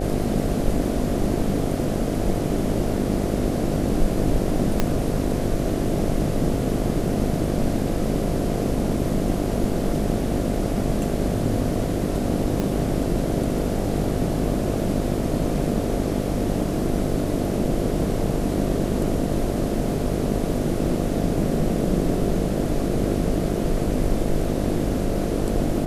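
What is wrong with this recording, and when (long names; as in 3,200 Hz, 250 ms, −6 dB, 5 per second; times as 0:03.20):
mains buzz 50 Hz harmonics 14 −27 dBFS
0:04.80: click −6 dBFS
0:12.60: click −12 dBFS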